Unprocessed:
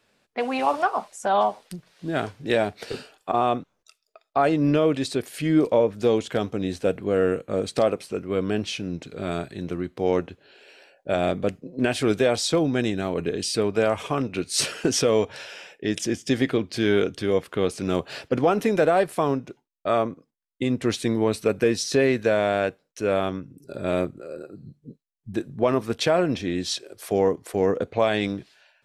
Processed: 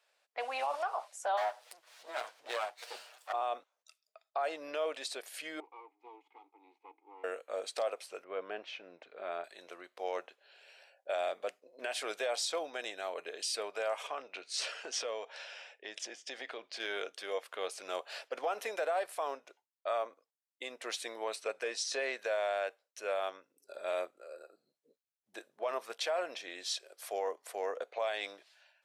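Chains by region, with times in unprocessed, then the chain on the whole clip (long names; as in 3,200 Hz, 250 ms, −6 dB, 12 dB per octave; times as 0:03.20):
0:01.37–0:03.33: lower of the sound and its delayed copy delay 8.2 ms + upward compression, threshold −38 dBFS
0:05.60–0:07.24: lower of the sound and its delayed copy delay 2.4 ms + formant filter u + high-shelf EQ 2,600 Hz −12 dB
0:08.24–0:09.44: low-pass filter 2,300 Hz + low-shelf EQ 210 Hz +7.5 dB
0:14.07–0:16.80: low-pass filter 5,900 Hz + low-shelf EQ 110 Hz +10.5 dB + downward compressor 2 to 1, threshold −24 dBFS
0:21.36–0:22.19: low-pass filter 9,500 Hz 24 dB per octave + de-essing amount 25%
whole clip: Chebyshev high-pass filter 600 Hz, order 3; brickwall limiter −18 dBFS; level −7 dB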